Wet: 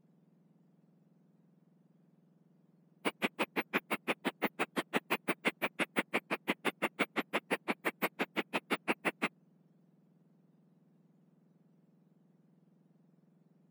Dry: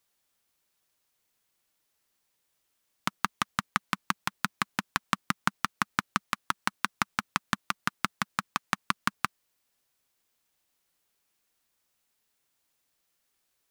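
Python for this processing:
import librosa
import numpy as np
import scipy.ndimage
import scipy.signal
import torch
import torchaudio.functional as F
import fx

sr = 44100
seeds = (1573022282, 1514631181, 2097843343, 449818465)

y = fx.octave_mirror(x, sr, pivot_hz=1800.0)
y = fx.formant_shift(y, sr, semitones=-2)
y = fx.low_shelf(y, sr, hz=110.0, db=-6.5)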